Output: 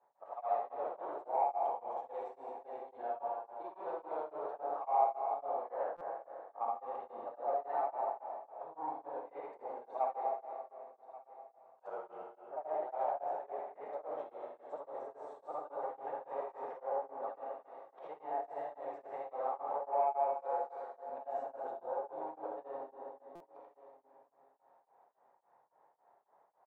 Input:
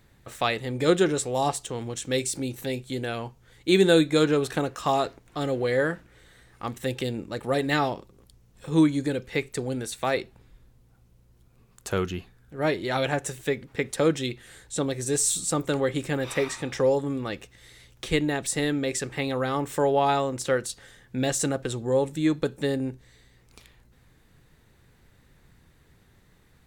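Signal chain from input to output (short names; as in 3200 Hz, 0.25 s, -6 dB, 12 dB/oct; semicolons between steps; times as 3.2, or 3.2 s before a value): short-time reversal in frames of 0.166 s; soft clip -27 dBFS, distortion -9 dB; compressor 12:1, threshold -34 dBFS, peak gain reduction 6.5 dB; Butterworth band-pass 770 Hz, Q 2.3; added harmonics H 3 -32 dB, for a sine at -31 dBFS; on a send: echo 1.133 s -17.5 dB; on the sum: plate-style reverb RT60 2.5 s, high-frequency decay 0.9×, DRR -1 dB; stuck buffer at 5.96/23.35, samples 256, times 8; beating tremolo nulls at 3.6 Hz; gain +9 dB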